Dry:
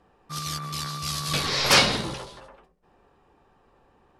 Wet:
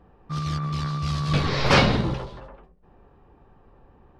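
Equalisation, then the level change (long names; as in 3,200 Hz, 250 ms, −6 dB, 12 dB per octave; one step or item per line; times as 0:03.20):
head-to-tape spacing loss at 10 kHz 24 dB
low-shelf EQ 180 Hz +9.5 dB
+4.0 dB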